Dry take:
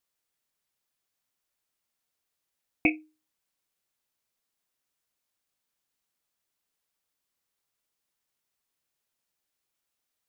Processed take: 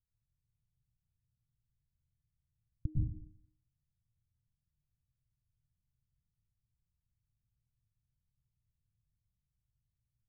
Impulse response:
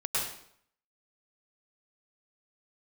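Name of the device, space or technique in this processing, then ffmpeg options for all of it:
club heard from the street: -filter_complex "[0:a]alimiter=limit=-20.5dB:level=0:latency=1,lowpass=frequency=120:width=0.5412,lowpass=frequency=120:width=1.3066[link_01];[1:a]atrim=start_sample=2205[link_02];[link_01][link_02]afir=irnorm=-1:irlink=0,volume=16.5dB"

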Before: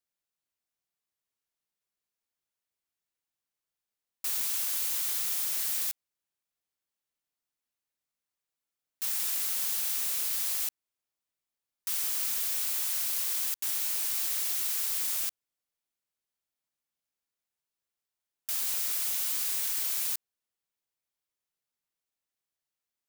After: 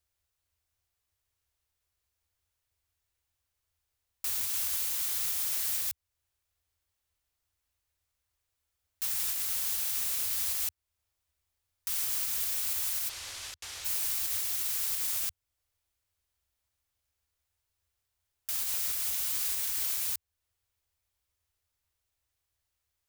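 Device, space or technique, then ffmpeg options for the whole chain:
car stereo with a boomy subwoofer: -filter_complex "[0:a]lowshelf=frequency=120:width_type=q:width=3:gain=13.5,alimiter=level_in=3dB:limit=-24dB:level=0:latency=1:release=348,volume=-3dB,asplit=3[link_01][link_02][link_03];[link_01]afade=type=out:start_time=13.08:duration=0.02[link_04];[link_02]lowpass=5600,afade=type=in:start_time=13.08:duration=0.02,afade=type=out:start_time=13.84:duration=0.02[link_05];[link_03]afade=type=in:start_time=13.84:duration=0.02[link_06];[link_04][link_05][link_06]amix=inputs=3:normalize=0,volume=6dB"

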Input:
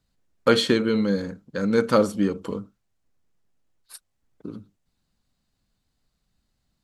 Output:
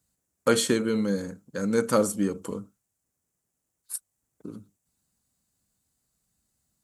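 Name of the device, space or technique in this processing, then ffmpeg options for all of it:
budget condenser microphone: -af "highpass=60,highshelf=frequency=5700:width_type=q:width=1.5:gain=11.5,volume=-3.5dB"

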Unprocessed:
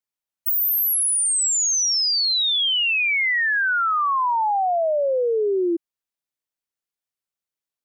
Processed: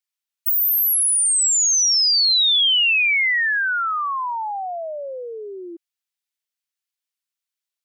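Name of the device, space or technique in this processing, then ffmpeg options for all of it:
filter by subtraction: -filter_complex "[0:a]asplit=2[link_01][link_02];[link_02]lowpass=2900,volume=-1[link_03];[link_01][link_03]amix=inputs=2:normalize=0,volume=2dB"

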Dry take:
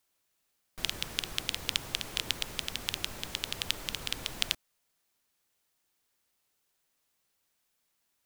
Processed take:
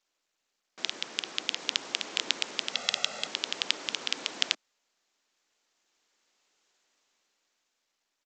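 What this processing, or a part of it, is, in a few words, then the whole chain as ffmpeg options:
Bluetooth headset: -filter_complex "[0:a]asettb=1/sr,asplit=3[link_01][link_02][link_03];[link_01]atrim=end=2.734[link_04];[link_02]atrim=start=2.73:end=3.27,asetpts=PTS-STARTPTS,afade=type=in:duration=0.004:curve=qsin,afade=type=out:start_time=0.536:duration=0.004:curve=qsin,aecho=1:1:1.5:0.94,atrim=end_sample=23814[link_05];[link_03]atrim=start=3.266[link_06];[link_04][link_05]acrossfade=duration=0.004:curve1=hsin:curve2=qsin[link_07];[link_07][link_06]acrossfade=duration=0.004:curve1=qsin:curve2=hsin,highpass=frequency=240:width=0.5412,highpass=frequency=240:width=1.3066,dynaudnorm=framelen=350:gausssize=9:maxgain=9.5dB,aresample=16000,aresample=44100" -ar 32000 -c:a sbc -b:a 64k

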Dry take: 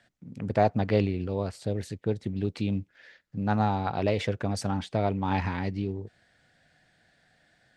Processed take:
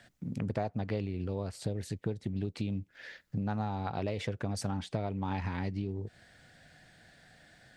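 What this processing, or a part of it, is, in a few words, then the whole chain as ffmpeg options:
ASMR close-microphone chain: -af "lowshelf=frequency=200:gain=4,acompressor=threshold=-37dB:ratio=5,highshelf=frequency=7500:gain=5.5,volume=5dB"

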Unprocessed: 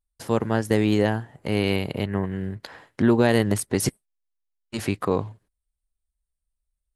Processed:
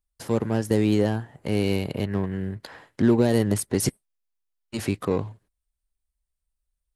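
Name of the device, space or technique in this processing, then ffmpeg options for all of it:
one-band saturation: -filter_complex "[0:a]acrossover=split=570|4200[link_01][link_02][link_03];[link_02]asoftclip=type=tanh:threshold=-31dB[link_04];[link_01][link_04][link_03]amix=inputs=3:normalize=0"

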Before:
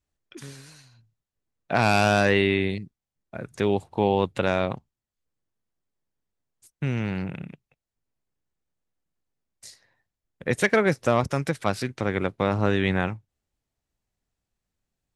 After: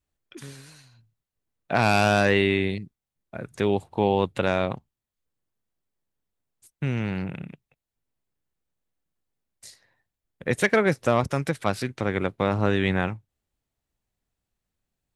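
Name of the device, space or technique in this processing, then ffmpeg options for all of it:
exciter from parts: -filter_complex "[0:a]asplit=2[link_01][link_02];[link_02]highpass=2700,asoftclip=type=tanh:threshold=-31dB,highpass=frequency=4400:width=0.5412,highpass=frequency=4400:width=1.3066,volume=-12dB[link_03];[link_01][link_03]amix=inputs=2:normalize=0"

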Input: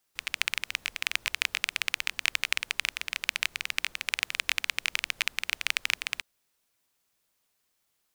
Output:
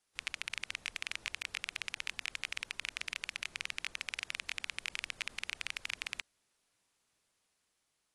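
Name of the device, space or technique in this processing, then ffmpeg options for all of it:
low-bitrate web radio: -af "dynaudnorm=framelen=270:gausssize=9:maxgain=4dB,alimiter=limit=-13.5dB:level=0:latency=1:release=23,volume=-2.5dB" -ar 24000 -c:a aac -b:a 48k

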